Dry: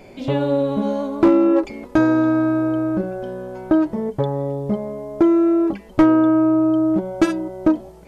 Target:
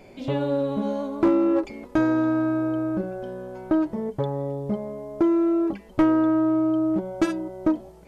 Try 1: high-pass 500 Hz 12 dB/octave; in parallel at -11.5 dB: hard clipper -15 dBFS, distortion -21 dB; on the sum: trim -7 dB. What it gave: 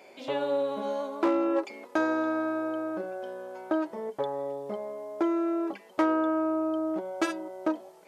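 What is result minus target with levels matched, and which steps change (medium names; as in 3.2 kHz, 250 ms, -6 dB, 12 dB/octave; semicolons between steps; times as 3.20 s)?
500 Hz band +3.0 dB
remove: high-pass 500 Hz 12 dB/octave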